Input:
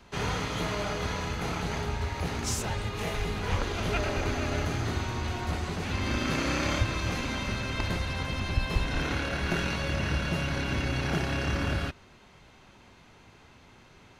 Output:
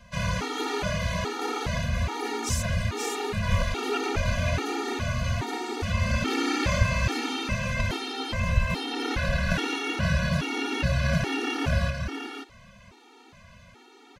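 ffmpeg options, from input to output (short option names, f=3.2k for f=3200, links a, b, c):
-af "aecho=1:1:531:0.531,afftfilt=real='re*gt(sin(2*PI*1.2*pts/sr)*(1-2*mod(floor(b*sr/1024/240),2)),0)':imag='im*gt(sin(2*PI*1.2*pts/sr)*(1-2*mod(floor(b*sr/1024/240),2)),0)':win_size=1024:overlap=0.75,volume=5dB"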